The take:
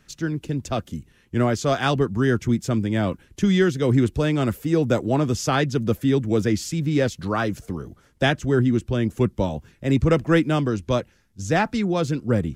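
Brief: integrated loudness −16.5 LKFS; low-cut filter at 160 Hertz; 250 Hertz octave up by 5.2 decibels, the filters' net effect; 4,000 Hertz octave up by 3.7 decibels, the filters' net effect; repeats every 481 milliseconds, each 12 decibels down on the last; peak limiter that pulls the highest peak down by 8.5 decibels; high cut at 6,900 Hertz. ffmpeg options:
ffmpeg -i in.wav -af "highpass=160,lowpass=6900,equalizer=frequency=250:width_type=o:gain=7.5,equalizer=frequency=4000:width_type=o:gain=5,alimiter=limit=-13dB:level=0:latency=1,aecho=1:1:481|962|1443:0.251|0.0628|0.0157,volume=6dB" out.wav

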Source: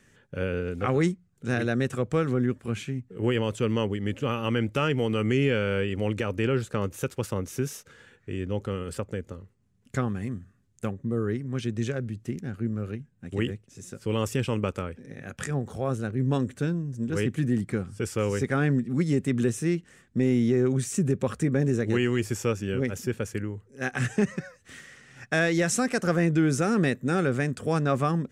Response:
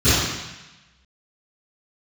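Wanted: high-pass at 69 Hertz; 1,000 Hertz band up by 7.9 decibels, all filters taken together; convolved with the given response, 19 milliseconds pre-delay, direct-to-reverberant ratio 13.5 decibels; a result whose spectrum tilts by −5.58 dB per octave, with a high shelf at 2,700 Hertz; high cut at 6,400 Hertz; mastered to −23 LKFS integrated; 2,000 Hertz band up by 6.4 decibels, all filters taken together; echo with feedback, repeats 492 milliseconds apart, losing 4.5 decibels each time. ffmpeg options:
-filter_complex "[0:a]highpass=69,lowpass=6400,equalizer=frequency=1000:width_type=o:gain=9,equalizer=frequency=2000:width_type=o:gain=3.5,highshelf=frequency=2700:gain=3.5,aecho=1:1:492|984|1476|1968|2460|2952|3444|3936|4428:0.596|0.357|0.214|0.129|0.0772|0.0463|0.0278|0.0167|0.01,asplit=2[link_01][link_02];[1:a]atrim=start_sample=2205,adelay=19[link_03];[link_02][link_03]afir=irnorm=-1:irlink=0,volume=-36dB[link_04];[link_01][link_04]amix=inputs=2:normalize=0,volume=0.5dB"

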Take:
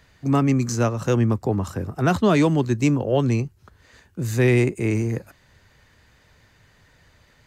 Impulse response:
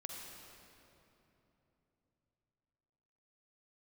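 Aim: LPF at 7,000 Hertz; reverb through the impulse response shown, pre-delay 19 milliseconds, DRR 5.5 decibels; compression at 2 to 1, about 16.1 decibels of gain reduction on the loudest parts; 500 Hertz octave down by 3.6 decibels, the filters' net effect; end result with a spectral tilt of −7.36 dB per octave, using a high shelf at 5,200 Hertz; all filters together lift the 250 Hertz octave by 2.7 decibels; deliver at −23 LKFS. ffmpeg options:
-filter_complex "[0:a]lowpass=7000,equalizer=frequency=250:width_type=o:gain=5.5,equalizer=frequency=500:width_type=o:gain=-7.5,highshelf=frequency=5200:gain=-6,acompressor=threshold=-44dB:ratio=2,asplit=2[link_01][link_02];[1:a]atrim=start_sample=2205,adelay=19[link_03];[link_02][link_03]afir=irnorm=-1:irlink=0,volume=-3.5dB[link_04];[link_01][link_04]amix=inputs=2:normalize=0,volume=12dB"

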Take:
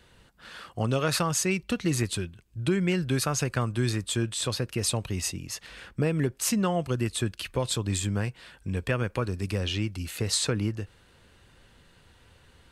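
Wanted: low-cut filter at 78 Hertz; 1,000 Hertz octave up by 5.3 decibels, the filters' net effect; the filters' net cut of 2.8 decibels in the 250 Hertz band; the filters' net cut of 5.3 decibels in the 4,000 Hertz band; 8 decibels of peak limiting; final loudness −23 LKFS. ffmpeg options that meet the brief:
ffmpeg -i in.wav -af "highpass=78,equalizer=frequency=250:width_type=o:gain=-4.5,equalizer=frequency=1000:width_type=o:gain=7.5,equalizer=frequency=4000:width_type=o:gain=-7,volume=8dB,alimiter=limit=-10dB:level=0:latency=1" out.wav

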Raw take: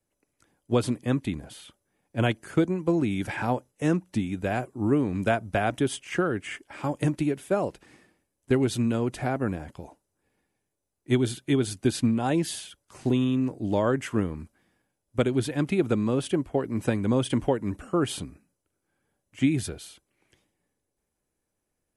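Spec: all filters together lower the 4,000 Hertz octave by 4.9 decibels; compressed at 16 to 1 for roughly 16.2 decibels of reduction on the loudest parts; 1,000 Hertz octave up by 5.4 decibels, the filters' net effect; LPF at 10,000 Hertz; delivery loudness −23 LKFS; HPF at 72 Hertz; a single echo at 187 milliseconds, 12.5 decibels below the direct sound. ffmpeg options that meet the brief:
ffmpeg -i in.wav -af "highpass=72,lowpass=10000,equalizer=frequency=1000:width_type=o:gain=8,equalizer=frequency=4000:width_type=o:gain=-7,acompressor=threshold=-33dB:ratio=16,aecho=1:1:187:0.237,volume=16.5dB" out.wav

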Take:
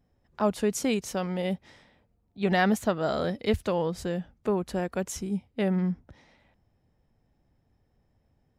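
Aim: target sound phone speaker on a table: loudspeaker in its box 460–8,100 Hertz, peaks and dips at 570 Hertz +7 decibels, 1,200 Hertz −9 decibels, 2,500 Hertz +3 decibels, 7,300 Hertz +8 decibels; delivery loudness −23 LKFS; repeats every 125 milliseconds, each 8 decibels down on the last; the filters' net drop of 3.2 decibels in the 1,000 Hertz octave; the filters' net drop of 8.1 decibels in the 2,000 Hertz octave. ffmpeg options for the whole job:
ffmpeg -i in.wav -af "highpass=frequency=460:width=0.5412,highpass=frequency=460:width=1.3066,equalizer=frequency=570:width_type=q:width=4:gain=7,equalizer=frequency=1200:width_type=q:width=4:gain=-9,equalizer=frequency=2500:width_type=q:width=4:gain=3,equalizer=frequency=7300:width_type=q:width=4:gain=8,lowpass=frequency=8100:width=0.5412,lowpass=frequency=8100:width=1.3066,equalizer=frequency=1000:width_type=o:gain=-3,equalizer=frequency=2000:width_type=o:gain=-9,aecho=1:1:125|250|375|500|625:0.398|0.159|0.0637|0.0255|0.0102,volume=8dB" out.wav

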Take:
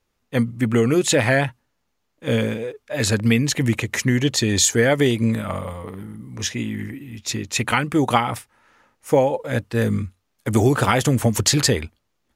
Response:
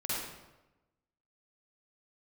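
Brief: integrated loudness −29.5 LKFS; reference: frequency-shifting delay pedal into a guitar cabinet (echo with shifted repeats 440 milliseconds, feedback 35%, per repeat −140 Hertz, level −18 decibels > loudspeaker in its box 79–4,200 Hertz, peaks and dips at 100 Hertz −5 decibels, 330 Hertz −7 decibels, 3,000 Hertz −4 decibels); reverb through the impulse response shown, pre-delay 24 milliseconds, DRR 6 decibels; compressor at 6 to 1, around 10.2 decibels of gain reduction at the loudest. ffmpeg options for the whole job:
-filter_complex "[0:a]acompressor=threshold=-23dB:ratio=6,asplit=2[link_01][link_02];[1:a]atrim=start_sample=2205,adelay=24[link_03];[link_02][link_03]afir=irnorm=-1:irlink=0,volume=-11dB[link_04];[link_01][link_04]amix=inputs=2:normalize=0,asplit=4[link_05][link_06][link_07][link_08];[link_06]adelay=440,afreqshift=-140,volume=-18dB[link_09];[link_07]adelay=880,afreqshift=-280,volume=-27.1dB[link_10];[link_08]adelay=1320,afreqshift=-420,volume=-36.2dB[link_11];[link_05][link_09][link_10][link_11]amix=inputs=4:normalize=0,highpass=79,equalizer=frequency=100:width_type=q:width=4:gain=-5,equalizer=frequency=330:width_type=q:width=4:gain=-7,equalizer=frequency=3000:width_type=q:width=4:gain=-4,lowpass=frequency=4200:width=0.5412,lowpass=frequency=4200:width=1.3066,volume=-0.5dB"

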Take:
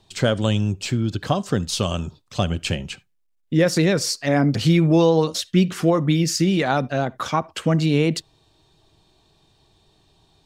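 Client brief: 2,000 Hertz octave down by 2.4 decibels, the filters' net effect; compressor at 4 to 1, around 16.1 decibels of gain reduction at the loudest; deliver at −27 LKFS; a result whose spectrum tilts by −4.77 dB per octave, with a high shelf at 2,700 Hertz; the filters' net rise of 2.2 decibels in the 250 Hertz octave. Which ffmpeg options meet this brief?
ffmpeg -i in.wav -af "equalizer=frequency=250:width_type=o:gain=3.5,equalizer=frequency=2000:width_type=o:gain=-5,highshelf=frequency=2700:gain=4,acompressor=threshold=-31dB:ratio=4,volume=6dB" out.wav

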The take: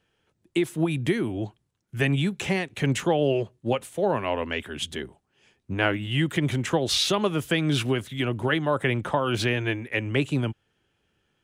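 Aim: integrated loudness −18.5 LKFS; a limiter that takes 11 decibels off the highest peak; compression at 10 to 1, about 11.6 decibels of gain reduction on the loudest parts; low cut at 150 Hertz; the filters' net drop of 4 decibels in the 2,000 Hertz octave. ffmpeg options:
ffmpeg -i in.wav -af "highpass=150,equalizer=frequency=2000:width_type=o:gain=-5,acompressor=threshold=-31dB:ratio=10,volume=21dB,alimiter=limit=-8.5dB:level=0:latency=1" out.wav

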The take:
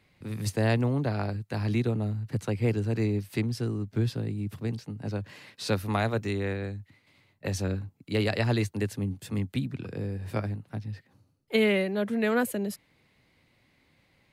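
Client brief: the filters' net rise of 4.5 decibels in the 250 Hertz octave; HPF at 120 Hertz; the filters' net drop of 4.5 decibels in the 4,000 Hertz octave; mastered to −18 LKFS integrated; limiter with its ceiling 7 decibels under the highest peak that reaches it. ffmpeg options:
ffmpeg -i in.wav -af "highpass=120,equalizer=frequency=250:width_type=o:gain=6,equalizer=frequency=4000:width_type=o:gain=-6,volume=12dB,alimiter=limit=-6.5dB:level=0:latency=1" out.wav

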